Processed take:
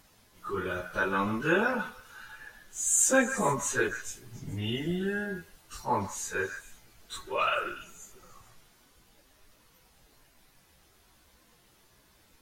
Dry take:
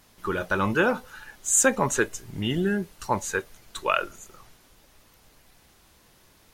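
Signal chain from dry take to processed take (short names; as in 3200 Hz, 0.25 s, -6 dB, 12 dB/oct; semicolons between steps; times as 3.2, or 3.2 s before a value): plain phase-vocoder stretch 1.9×; delay with a stepping band-pass 0.144 s, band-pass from 1600 Hz, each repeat 1.4 oct, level -7.5 dB; gain -2 dB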